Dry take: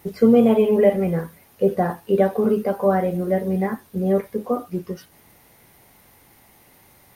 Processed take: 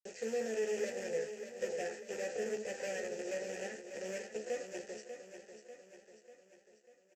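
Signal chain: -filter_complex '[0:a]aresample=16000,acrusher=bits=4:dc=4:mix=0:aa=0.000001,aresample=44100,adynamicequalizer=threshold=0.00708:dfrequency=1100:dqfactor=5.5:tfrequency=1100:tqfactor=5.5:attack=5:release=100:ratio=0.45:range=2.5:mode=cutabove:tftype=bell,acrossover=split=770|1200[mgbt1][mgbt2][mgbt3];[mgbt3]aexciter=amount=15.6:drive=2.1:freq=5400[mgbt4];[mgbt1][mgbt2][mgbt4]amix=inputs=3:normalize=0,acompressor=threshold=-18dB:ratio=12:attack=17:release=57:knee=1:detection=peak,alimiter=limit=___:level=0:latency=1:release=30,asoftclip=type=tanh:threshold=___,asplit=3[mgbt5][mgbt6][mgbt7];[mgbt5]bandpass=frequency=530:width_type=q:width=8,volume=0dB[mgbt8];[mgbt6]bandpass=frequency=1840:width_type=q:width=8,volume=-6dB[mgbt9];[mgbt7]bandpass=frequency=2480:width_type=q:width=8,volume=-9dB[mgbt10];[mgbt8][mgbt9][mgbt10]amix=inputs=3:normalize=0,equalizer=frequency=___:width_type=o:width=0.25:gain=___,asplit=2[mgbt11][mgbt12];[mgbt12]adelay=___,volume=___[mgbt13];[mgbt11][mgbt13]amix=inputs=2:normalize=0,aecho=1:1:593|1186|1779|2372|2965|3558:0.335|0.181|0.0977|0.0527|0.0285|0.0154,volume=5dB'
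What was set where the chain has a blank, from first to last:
-11.5dB, -24.5dB, 570, -9, 14, -4.5dB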